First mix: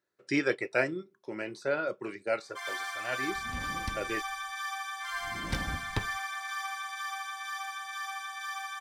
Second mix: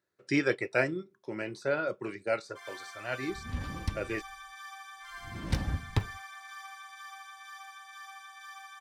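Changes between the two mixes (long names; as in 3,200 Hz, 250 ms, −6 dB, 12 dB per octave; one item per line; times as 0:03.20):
first sound −9.5 dB
master: add parametric band 89 Hz +7.5 dB 1.6 octaves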